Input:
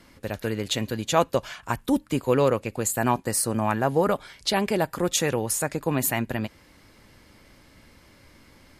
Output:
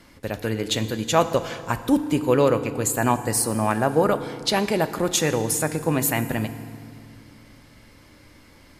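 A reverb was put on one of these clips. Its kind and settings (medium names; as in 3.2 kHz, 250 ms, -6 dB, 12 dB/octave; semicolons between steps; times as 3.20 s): FDN reverb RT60 2.1 s, low-frequency decay 1.5×, high-frequency decay 0.8×, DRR 10.5 dB; trim +2 dB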